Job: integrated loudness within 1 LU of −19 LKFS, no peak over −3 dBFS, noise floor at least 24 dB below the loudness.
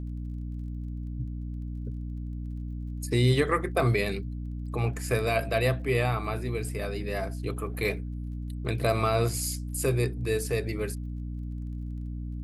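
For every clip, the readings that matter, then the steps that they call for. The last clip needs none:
crackle rate 23 per second; mains hum 60 Hz; hum harmonics up to 300 Hz; level of the hum −32 dBFS; integrated loudness −30.0 LKFS; sample peak −12.0 dBFS; target loudness −19.0 LKFS
→ click removal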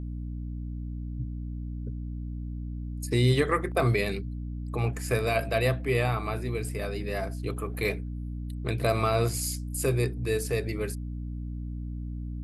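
crackle rate 0 per second; mains hum 60 Hz; hum harmonics up to 300 Hz; level of the hum −32 dBFS
→ mains-hum notches 60/120/180/240/300 Hz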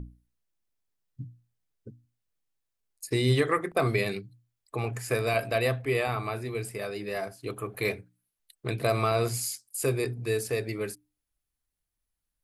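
mains hum none found; integrated loudness −29.5 LKFS; sample peak −12.5 dBFS; target loudness −19.0 LKFS
→ level +10.5 dB
brickwall limiter −3 dBFS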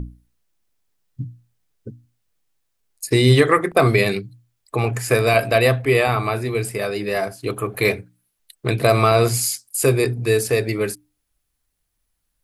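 integrated loudness −19.0 LKFS; sample peak −3.0 dBFS; background noise floor −74 dBFS

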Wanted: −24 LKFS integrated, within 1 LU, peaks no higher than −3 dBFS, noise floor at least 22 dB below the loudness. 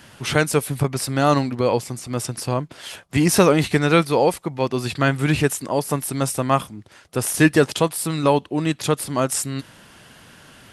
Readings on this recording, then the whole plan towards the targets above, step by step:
integrated loudness −20.5 LKFS; sample peak −2.0 dBFS; target loudness −24.0 LKFS
→ level −3.5 dB

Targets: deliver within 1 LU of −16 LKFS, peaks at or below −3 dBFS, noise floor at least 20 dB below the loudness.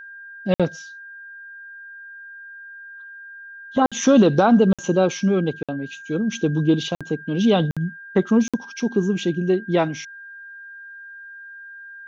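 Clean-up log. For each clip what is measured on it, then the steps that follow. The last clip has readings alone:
number of dropouts 7; longest dropout 56 ms; interfering tone 1,600 Hz; level of the tone −37 dBFS; integrated loudness −20.5 LKFS; sample peak −5.0 dBFS; target loudness −16.0 LKFS
→ repair the gap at 0:00.54/0:03.86/0:04.73/0:05.63/0:06.95/0:07.71/0:08.48, 56 ms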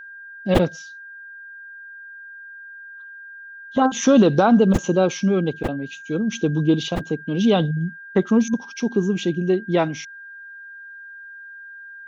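number of dropouts 0; interfering tone 1,600 Hz; level of the tone −37 dBFS
→ notch filter 1,600 Hz, Q 30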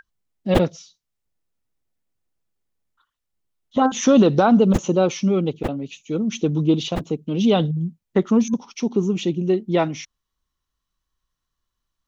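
interfering tone none found; integrated loudness −20.5 LKFS; sample peak −2.5 dBFS; target loudness −16.0 LKFS
→ level +4.5 dB
brickwall limiter −3 dBFS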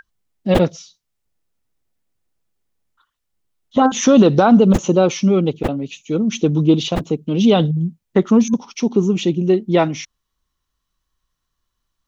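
integrated loudness −16.5 LKFS; sample peak −3.0 dBFS; background noise floor −77 dBFS

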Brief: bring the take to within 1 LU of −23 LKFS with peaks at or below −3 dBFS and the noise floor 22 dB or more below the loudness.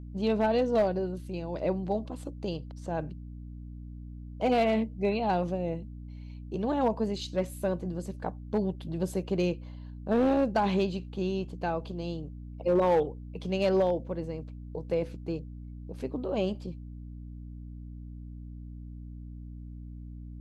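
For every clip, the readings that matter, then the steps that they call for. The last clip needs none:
share of clipped samples 0.3%; peaks flattened at −18.5 dBFS; mains hum 60 Hz; hum harmonics up to 300 Hz; level of the hum −40 dBFS; integrated loudness −30.5 LKFS; sample peak −18.5 dBFS; target loudness −23.0 LKFS
→ clipped peaks rebuilt −18.5 dBFS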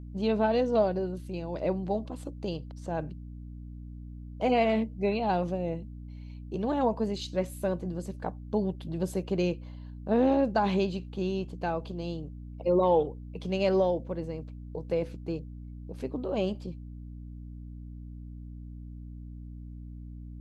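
share of clipped samples 0.0%; mains hum 60 Hz; hum harmonics up to 300 Hz; level of the hum −40 dBFS
→ mains-hum notches 60/120/180/240/300 Hz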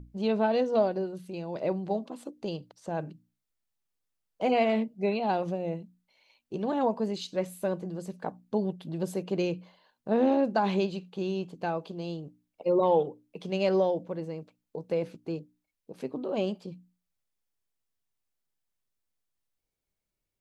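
mains hum none found; integrated loudness −30.0 LKFS; sample peak −13.5 dBFS; target loudness −23.0 LKFS
→ level +7 dB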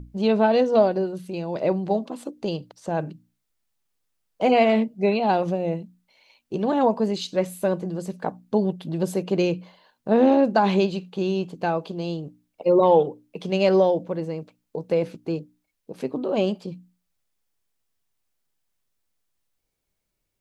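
integrated loudness −23.0 LKFS; sample peak −6.5 dBFS; background noise floor −78 dBFS

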